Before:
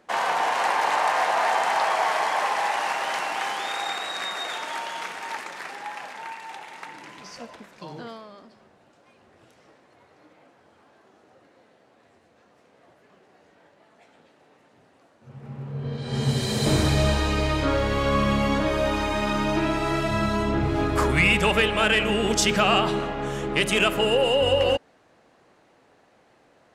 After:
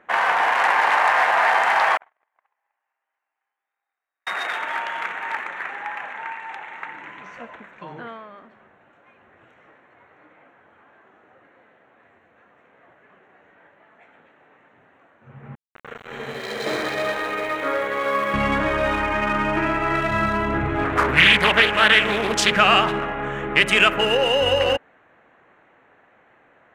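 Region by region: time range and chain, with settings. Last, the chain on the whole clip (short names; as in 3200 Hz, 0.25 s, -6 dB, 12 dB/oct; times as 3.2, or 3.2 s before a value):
1.97–4.27 G.711 law mismatch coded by A + elliptic high-pass 250 Hz + gate -19 dBFS, range -58 dB
15.55–18.34 speaker cabinet 400–7600 Hz, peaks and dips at 470 Hz +4 dB, 930 Hz -5 dB, 1500 Hz -4 dB, 2800 Hz -8 dB, 4800 Hz -3 dB + sample gate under -33.5 dBFS
18.99–19.95 LPF 6000 Hz + notch 3800 Hz, Q 7.8
20.84–22.56 HPF 74 Hz 6 dB/oct + Doppler distortion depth 0.5 ms
whole clip: Wiener smoothing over 9 samples; bell 1800 Hz +11 dB 1.8 oct; gain -1 dB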